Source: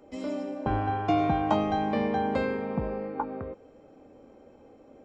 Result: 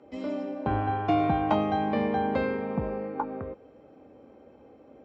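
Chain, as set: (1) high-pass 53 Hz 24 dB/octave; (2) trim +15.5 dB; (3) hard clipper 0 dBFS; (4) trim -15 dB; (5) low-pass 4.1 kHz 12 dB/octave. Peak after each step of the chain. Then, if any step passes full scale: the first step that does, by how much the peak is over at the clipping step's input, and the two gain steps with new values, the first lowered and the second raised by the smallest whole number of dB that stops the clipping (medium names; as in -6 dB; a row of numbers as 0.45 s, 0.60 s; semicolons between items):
-12.0 dBFS, +3.5 dBFS, 0.0 dBFS, -15.0 dBFS, -14.5 dBFS; step 2, 3.5 dB; step 2 +11.5 dB, step 4 -11 dB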